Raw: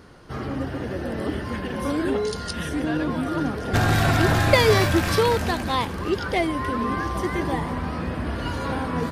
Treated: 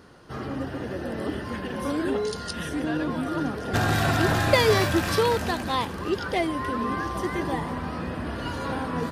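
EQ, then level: low shelf 66 Hz -9.5 dB; notch 2200 Hz, Q 18; -2.0 dB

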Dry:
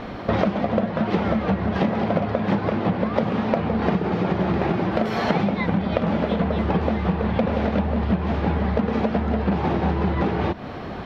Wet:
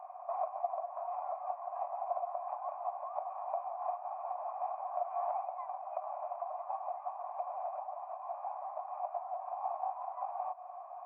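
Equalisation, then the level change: vocal tract filter a; brick-wall FIR band-pass 560–3200 Hz; -2.5 dB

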